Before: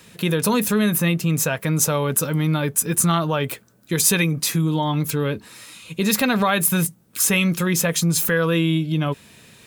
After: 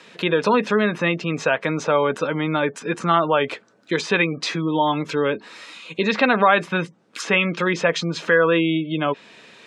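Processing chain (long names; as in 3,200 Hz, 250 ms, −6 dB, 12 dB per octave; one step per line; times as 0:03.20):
treble cut that deepens with the level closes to 2,900 Hz, closed at −14.5 dBFS
high-pass filter 350 Hz 12 dB per octave
gate on every frequency bin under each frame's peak −30 dB strong
high-frequency loss of the air 140 metres
level +6 dB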